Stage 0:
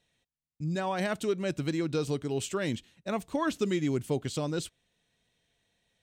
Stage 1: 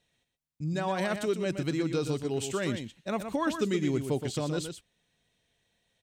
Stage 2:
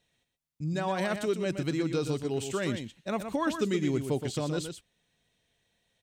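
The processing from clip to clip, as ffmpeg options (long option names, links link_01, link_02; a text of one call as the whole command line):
ffmpeg -i in.wav -af "aecho=1:1:121:0.398" out.wav
ffmpeg -i in.wav -af "deesser=0.75" out.wav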